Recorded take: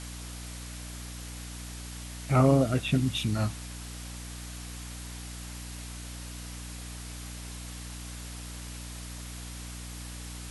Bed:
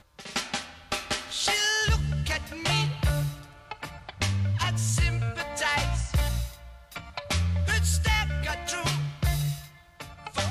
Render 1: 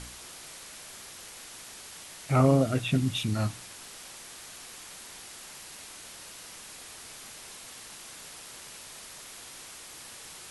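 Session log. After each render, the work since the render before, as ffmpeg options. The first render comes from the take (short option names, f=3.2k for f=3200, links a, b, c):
-af "bandreject=f=60:t=h:w=4,bandreject=f=120:t=h:w=4,bandreject=f=180:t=h:w=4,bandreject=f=240:t=h:w=4,bandreject=f=300:t=h:w=4"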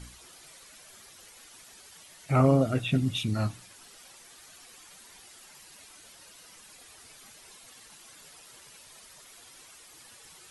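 -af "afftdn=nr=10:nf=-46"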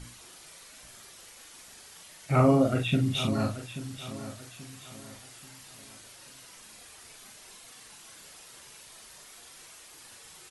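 -filter_complex "[0:a]asplit=2[a][b];[b]adelay=41,volume=-4.5dB[c];[a][c]amix=inputs=2:normalize=0,aecho=1:1:834|1668|2502|3336:0.224|0.0828|0.0306|0.0113"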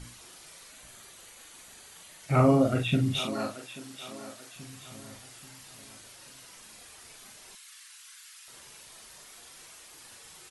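-filter_complex "[0:a]asettb=1/sr,asplit=3[a][b][c];[a]atrim=end=0.724[d];[b]atrim=start=0.72:end=2.23,asetpts=PTS-STARTPTS,afade=t=in:d=0.004:c=qsin,afade=t=out:st=1.506:d=0.004:c=qsin,bandreject=f=5.3k:w=6.8[e];[c]atrim=start=2.226[f];[d][e]acrossfade=d=0.004:c1=hsin:c2=qsin[g];[g][f]acrossfade=d=0.004:c1=qsin:c2=hsin,asettb=1/sr,asplit=3[h][i][j];[h]atrim=end=3.194[k];[i]atrim=start=3.19:end=4.56,asetpts=PTS-STARTPTS,afade=t=in:d=0.004:c=qsin,afade=t=out:st=1.366:d=0.004:c=qsin,highpass=300[l];[j]atrim=start=4.556[m];[k][l]acrossfade=d=0.004:c1=hsin:c2=qsin[n];[n][m]acrossfade=d=0.004:c1=qsin:c2=hsin,asettb=1/sr,asplit=3[o][p][q];[o]atrim=end=7.554[r];[p]atrim=start=7.55:end=8.48,asetpts=PTS-STARTPTS,afade=t=in:d=0.004:c=qsin,afade=t=out:st=0.926:d=0.004:c=qsin,highpass=f=1.3k:w=0.5412,highpass=f=1.3k:w=1.3066[s];[q]atrim=start=8.476[t];[r][s]acrossfade=d=0.004:c1=hsin:c2=qsin[u];[u][t]acrossfade=d=0.004:c1=qsin:c2=hsin"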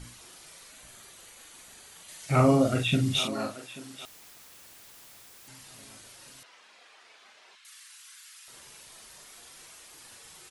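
-filter_complex "[0:a]asettb=1/sr,asplit=3[a][b][c];[a]atrim=end=2.084[d];[b]atrim=start=2.08:end=3.28,asetpts=PTS-STARTPTS,afade=t=in:d=0.004:c=qsin,afade=t=out:st=1.196:d=0.004:c=qsin,equalizer=f=6.6k:t=o:w=2.4:g=6.5[e];[c]atrim=start=3.276[f];[d][e]acrossfade=d=0.004:c1=hsin:c2=qsin[g];[g][f]acrossfade=d=0.004:c1=qsin:c2=hsin,asettb=1/sr,asplit=3[h][i][j];[h]atrim=end=4.054[k];[i]atrim=start=4.05:end=5.48,asetpts=PTS-STARTPTS,afade=t=in:d=0.004:c=qsin,afade=t=out:st=1.426:d=0.004:c=qsin,aeval=exprs='(mod(224*val(0)+1,2)-1)/224':c=same[l];[j]atrim=start=5.476[m];[k][l]acrossfade=d=0.004:c1=hsin:c2=qsin[n];[n][m]acrossfade=d=0.004:c1=qsin:c2=hsin,asettb=1/sr,asplit=3[o][p][q];[o]atrim=end=6.434[r];[p]atrim=start=6.43:end=7.65,asetpts=PTS-STARTPTS,afade=t=in:d=0.004:c=qsin,afade=t=out:st=1.216:d=0.004:c=qsin,highpass=510,lowpass=3.5k[s];[q]atrim=start=7.646[t];[r][s]acrossfade=d=0.004:c1=hsin:c2=qsin[u];[u][t]acrossfade=d=0.004:c1=qsin:c2=hsin"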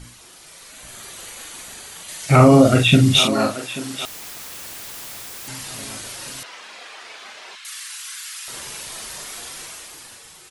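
-af "dynaudnorm=f=150:g=13:m=12dB,alimiter=level_in=4.5dB:limit=-1dB:release=50:level=0:latency=1"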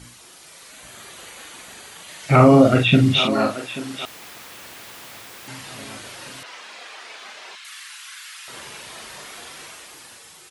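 -filter_complex "[0:a]acrossover=split=3800[a][b];[b]acompressor=threshold=-42dB:ratio=4:attack=1:release=60[c];[a][c]amix=inputs=2:normalize=0,highpass=f=110:p=1"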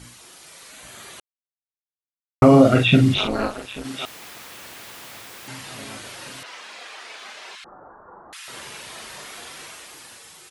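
-filter_complex "[0:a]asettb=1/sr,asplit=3[a][b][c];[a]atrim=end=3.144[d];[b]atrim=start=3.14:end=3.85,asetpts=PTS-STARTPTS,afade=t=in:d=0.004:c=qsin,afade=t=out:st=0.706:d=0.004:c=qsin,tremolo=f=210:d=0.919[e];[c]atrim=start=3.846[f];[d][e]acrossfade=d=0.004:c1=hsin:c2=qsin[g];[g][f]acrossfade=d=0.004:c1=qsin:c2=hsin,asettb=1/sr,asplit=3[h][i][j];[h]atrim=end=7.644[k];[i]atrim=start=7.64:end=8.33,asetpts=PTS-STARTPTS,afade=t=in:d=0.004:c=qsin,afade=t=out:st=0.686:d=0.004:c=qsin,lowpass=f=2.1k:t=q:w=0.5098,lowpass=f=2.1k:t=q:w=0.6013,lowpass=f=2.1k:t=q:w=0.9,lowpass=f=2.1k:t=q:w=2.563,afreqshift=-2500[l];[j]atrim=start=8.326[m];[k][l]acrossfade=d=0.004:c1=hsin:c2=qsin[n];[n][m]acrossfade=d=0.004:c1=qsin:c2=hsin,asplit=3[o][p][q];[o]atrim=end=1.2,asetpts=PTS-STARTPTS,afade=t=out:st=1.196:d=0.004:c=hsin[r];[p]atrim=start=1.2:end=2.42,asetpts=PTS-STARTPTS,volume=0[s];[q]atrim=start=2.42,asetpts=PTS-STARTPTS,afade=t=in:d=0.004:c=hsin[t];[r][s][t]concat=n=3:v=0:a=1"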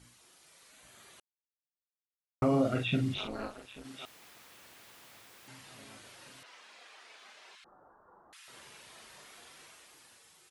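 -af "volume=-15.5dB"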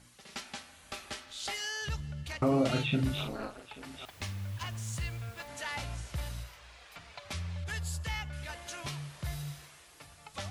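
-filter_complex "[1:a]volume=-12dB[a];[0:a][a]amix=inputs=2:normalize=0"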